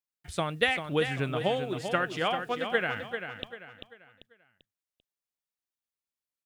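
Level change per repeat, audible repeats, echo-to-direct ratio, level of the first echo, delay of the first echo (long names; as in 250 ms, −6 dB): −9.0 dB, 4, −7.5 dB, −8.0 dB, 392 ms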